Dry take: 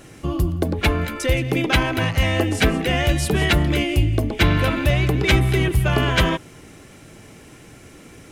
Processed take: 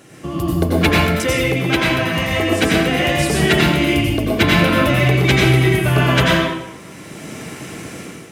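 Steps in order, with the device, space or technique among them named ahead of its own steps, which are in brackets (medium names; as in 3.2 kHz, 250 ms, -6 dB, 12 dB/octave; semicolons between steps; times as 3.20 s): far laptop microphone (reverberation RT60 0.85 s, pre-delay 82 ms, DRR -3 dB; high-pass 120 Hz 12 dB/octave; level rider gain up to 10.5 dB); trim -1 dB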